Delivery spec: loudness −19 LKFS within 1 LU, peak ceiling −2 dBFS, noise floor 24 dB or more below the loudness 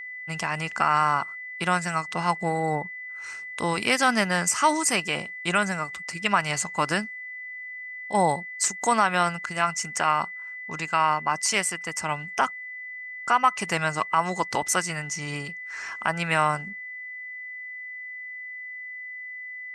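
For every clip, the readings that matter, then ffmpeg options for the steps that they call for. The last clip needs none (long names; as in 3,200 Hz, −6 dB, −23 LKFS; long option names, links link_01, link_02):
interfering tone 2,000 Hz; level of the tone −35 dBFS; integrated loudness −26.0 LKFS; sample peak −6.0 dBFS; target loudness −19.0 LKFS
→ -af "bandreject=frequency=2000:width=30"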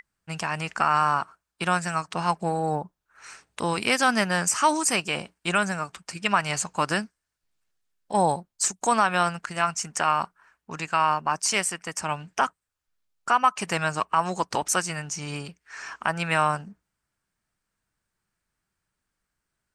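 interfering tone none found; integrated loudness −25.5 LKFS; sample peak −6.5 dBFS; target loudness −19.0 LKFS
→ -af "volume=6.5dB,alimiter=limit=-2dB:level=0:latency=1"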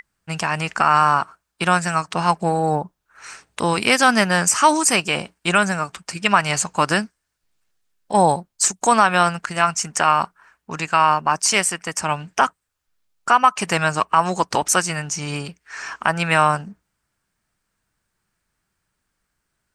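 integrated loudness −19.0 LKFS; sample peak −2.0 dBFS; background noise floor −77 dBFS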